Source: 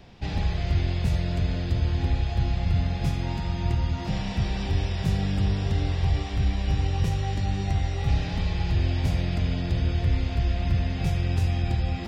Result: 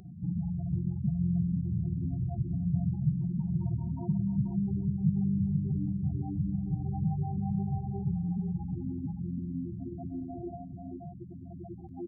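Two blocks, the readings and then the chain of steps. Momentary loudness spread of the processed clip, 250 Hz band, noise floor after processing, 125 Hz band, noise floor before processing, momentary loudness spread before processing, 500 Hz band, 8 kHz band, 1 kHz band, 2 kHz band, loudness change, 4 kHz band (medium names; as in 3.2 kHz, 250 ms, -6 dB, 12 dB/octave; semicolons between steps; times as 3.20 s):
13 LU, +1.0 dB, -45 dBFS, -6.5 dB, -31 dBFS, 3 LU, -11.5 dB, no reading, -11.5 dB, under -40 dB, -5.5 dB, under -40 dB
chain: loudest bins only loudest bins 8; on a send: delay 484 ms -6 dB; on the sum: high-pass sweep 160 Hz -> 400 Hz, 7.82–11.13 s; in parallel at +1 dB: compression, threshold -36 dBFS, peak gain reduction 18.5 dB; on the sum: pre-echo 189 ms -13 dB; upward compressor, threshold -45 dBFS; trim -6.5 dB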